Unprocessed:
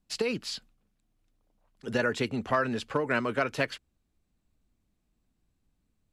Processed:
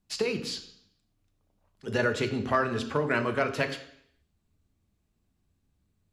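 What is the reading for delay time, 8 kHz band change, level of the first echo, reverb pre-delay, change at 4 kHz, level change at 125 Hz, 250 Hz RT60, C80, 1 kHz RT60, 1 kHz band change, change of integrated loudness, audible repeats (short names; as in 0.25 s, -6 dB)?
none, +1.0 dB, none, 3 ms, +1.0 dB, +3.0 dB, 0.65 s, 14.0 dB, 0.70 s, +1.0 dB, +1.0 dB, none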